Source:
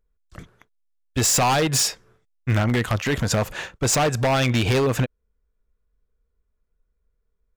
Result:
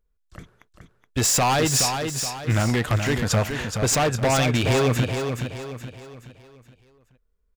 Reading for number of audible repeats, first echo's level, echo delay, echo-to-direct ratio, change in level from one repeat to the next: 4, −6.5 dB, 423 ms, −5.5 dB, −7.5 dB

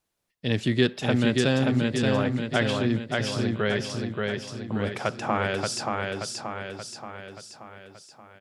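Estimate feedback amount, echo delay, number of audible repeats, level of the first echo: 54%, 579 ms, 6, −3.0 dB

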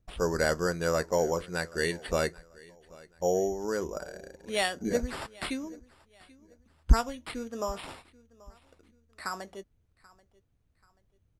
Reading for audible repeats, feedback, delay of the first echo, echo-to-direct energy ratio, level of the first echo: 2, 36%, 784 ms, −22.5 dB, −23.0 dB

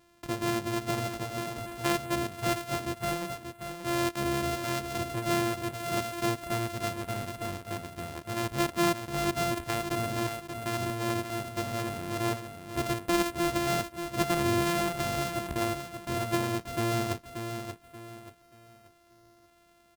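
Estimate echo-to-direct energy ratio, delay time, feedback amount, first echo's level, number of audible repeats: −7.0 dB, 582 ms, 33%, −7.5 dB, 3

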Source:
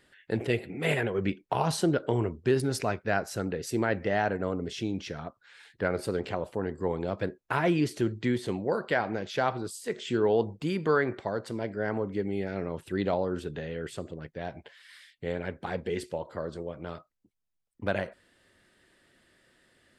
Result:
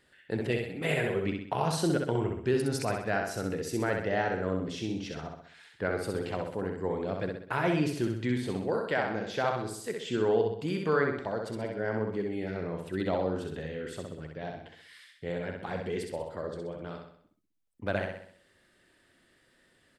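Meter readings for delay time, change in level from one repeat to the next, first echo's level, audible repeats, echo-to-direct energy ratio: 64 ms, −6.5 dB, −4.0 dB, 5, −3.0 dB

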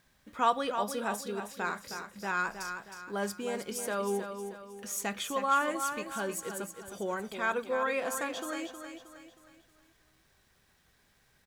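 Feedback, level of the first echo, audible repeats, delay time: 42%, −8.0 dB, 4, 315 ms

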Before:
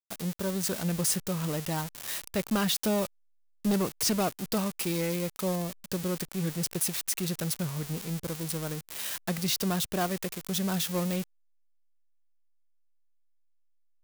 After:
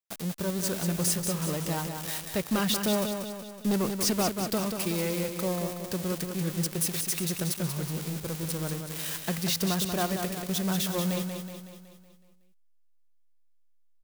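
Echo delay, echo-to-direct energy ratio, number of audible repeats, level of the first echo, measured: 186 ms, −5.0 dB, 6, −6.5 dB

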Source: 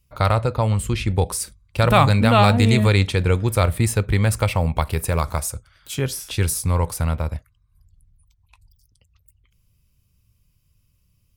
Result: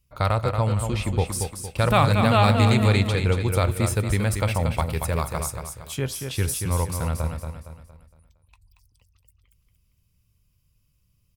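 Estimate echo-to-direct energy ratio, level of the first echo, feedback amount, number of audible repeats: −5.5 dB, −6.5 dB, 40%, 4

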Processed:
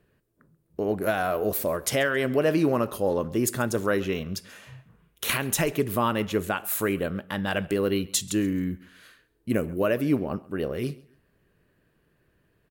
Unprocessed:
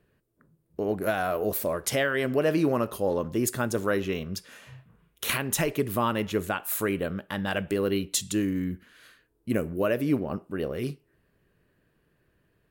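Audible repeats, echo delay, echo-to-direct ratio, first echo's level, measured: 2, 135 ms, −21.5 dB, −22.0 dB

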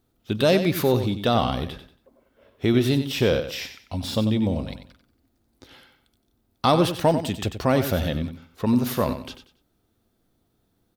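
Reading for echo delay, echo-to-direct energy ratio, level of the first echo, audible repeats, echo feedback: 93 ms, −9.5 dB, −10.0 dB, 3, 28%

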